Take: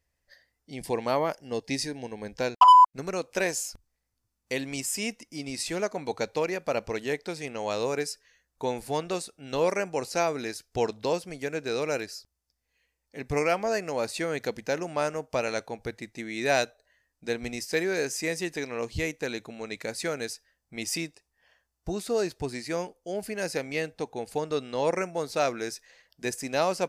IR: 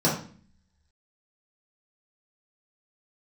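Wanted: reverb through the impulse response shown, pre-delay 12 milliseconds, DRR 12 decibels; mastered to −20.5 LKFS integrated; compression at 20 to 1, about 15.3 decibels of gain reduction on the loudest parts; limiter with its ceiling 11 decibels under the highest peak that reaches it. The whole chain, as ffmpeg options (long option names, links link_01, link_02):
-filter_complex "[0:a]acompressor=threshold=-27dB:ratio=20,alimiter=level_in=2dB:limit=-24dB:level=0:latency=1,volume=-2dB,asplit=2[link_01][link_02];[1:a]atrim=start_sample=2205,adelay=12[link_03];[link_02][link_03]afir=irnorm=-1:irlink=0,volume=-26.5dB[link_04];[link_01][link_04]amix=inputs=2:normalize=0,volume=16dB"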